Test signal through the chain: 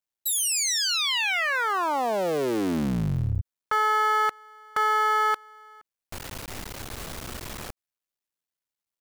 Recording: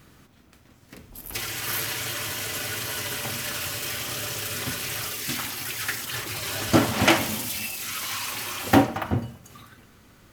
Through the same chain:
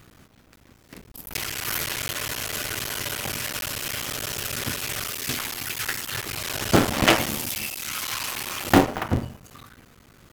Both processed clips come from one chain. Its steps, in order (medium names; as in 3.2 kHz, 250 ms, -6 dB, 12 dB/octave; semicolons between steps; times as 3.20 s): cycle switcher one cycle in 3, muted; trim +2.5 dB